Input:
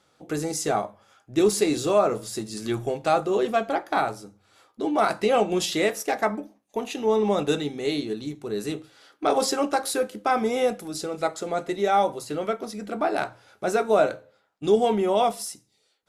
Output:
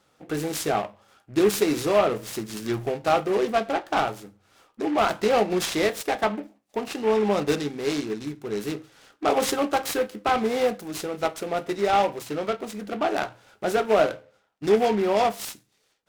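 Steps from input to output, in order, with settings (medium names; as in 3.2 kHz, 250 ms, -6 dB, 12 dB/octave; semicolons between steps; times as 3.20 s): delay time shaken by noise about 1.5 kHz, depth 0.044 ms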